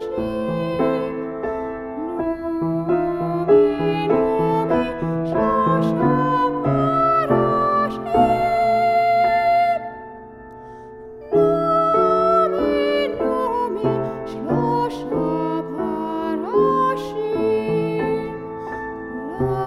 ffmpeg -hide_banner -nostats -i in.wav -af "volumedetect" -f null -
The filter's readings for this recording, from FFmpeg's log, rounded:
mean_volume: -19.7 dB
max_volume: -4.0 dB